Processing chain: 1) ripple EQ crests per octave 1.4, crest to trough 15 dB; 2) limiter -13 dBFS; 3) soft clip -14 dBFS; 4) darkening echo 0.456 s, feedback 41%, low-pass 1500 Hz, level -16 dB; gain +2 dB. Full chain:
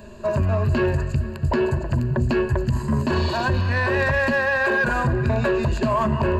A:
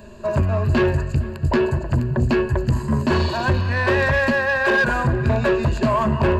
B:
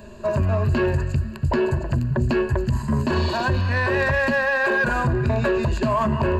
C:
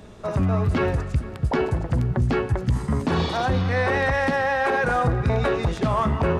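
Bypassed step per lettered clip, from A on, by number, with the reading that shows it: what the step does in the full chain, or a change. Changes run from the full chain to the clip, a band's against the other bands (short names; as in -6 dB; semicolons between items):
2, mean gain reduction 2.0 dB; 4, echo-to-direct -18.5 dB to none; 1, 2 kHz band -3.0 dB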